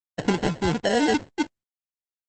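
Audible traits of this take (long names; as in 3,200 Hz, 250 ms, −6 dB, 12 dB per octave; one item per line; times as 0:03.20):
a quantiser's noise floor 8 bits, dither none
phaser sweep stages 6, 1.4 Hz, lowest notch 500–1,500 Hz
aliases and images of a low sample rate 1,200 Hz, jitter 0%
Opus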